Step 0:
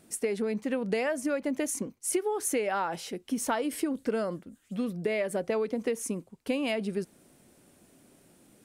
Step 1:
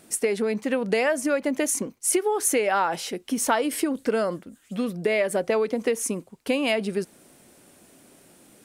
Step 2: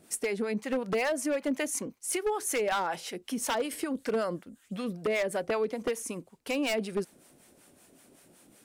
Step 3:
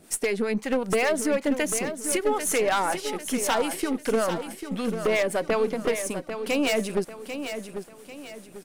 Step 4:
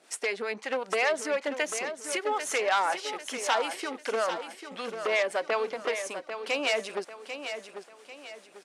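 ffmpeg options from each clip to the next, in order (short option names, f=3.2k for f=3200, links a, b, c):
-af "lowshelf=f=290:g=-7,volume=8dB"
-filter_complex "[0:a]acrossover=split=660[a][b];[a]aeval=exprs='val(0)*(1-0.7/2+0.7/2*cos(2*PI*5.3*n/s))':c=same[c];[b]aeval=exprs='val(0)*(1-0.7/2-0.7/2*cos(2*PI*5.3*n/s))':c=same[d];[c][d]amix=inputs=2:normalize=0,aeval=exprs='0.1*(abs(mod(val(0)/0.1+3,4)-2)-1)':c=same,volume=-2dB"
-af "aeval=exprs='if(lt(val(0),0),0.708*val(0),val(0))':c=same,aecho=1:1:794|1588|2382|3176:0.355|0.135|0.0512|0.0195,volume=6.5dB"
-af "highpass=600,lowpass=6k"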